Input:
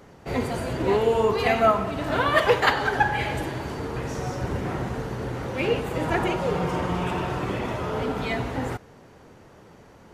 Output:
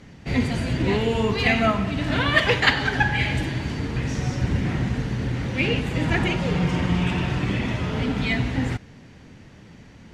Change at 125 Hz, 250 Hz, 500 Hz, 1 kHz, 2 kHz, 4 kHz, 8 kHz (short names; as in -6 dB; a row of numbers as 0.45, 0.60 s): +7.0, +5.5, -3.5, -4.0, +4.0, +6.0, +1.5 dB